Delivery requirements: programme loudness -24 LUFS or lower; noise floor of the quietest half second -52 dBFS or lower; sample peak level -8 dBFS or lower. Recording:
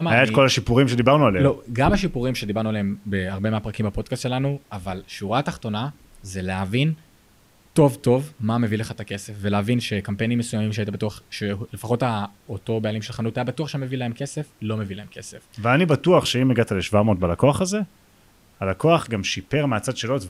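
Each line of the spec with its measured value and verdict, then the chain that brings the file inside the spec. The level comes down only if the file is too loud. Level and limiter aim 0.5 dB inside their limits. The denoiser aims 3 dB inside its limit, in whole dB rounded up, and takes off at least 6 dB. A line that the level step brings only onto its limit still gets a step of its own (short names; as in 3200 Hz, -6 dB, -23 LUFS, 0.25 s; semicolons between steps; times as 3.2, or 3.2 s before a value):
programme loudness -22.5 LUFS: fail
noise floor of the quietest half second -56 dBFS: OK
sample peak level -5.5 dBFS: fail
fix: gain -2 dB; limiter -8.5 dBFS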